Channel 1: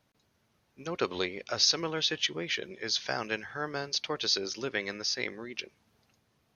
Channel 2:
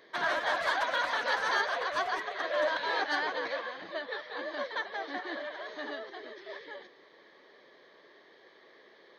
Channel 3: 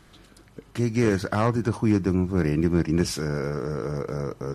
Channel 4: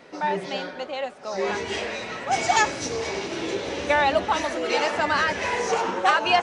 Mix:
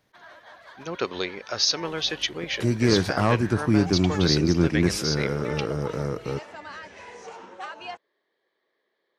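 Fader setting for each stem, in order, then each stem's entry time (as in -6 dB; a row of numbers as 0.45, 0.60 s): +2.5, -18.0, +1.0, -17.5 dB; 0.00, 0.00, 1.85, 1.55 s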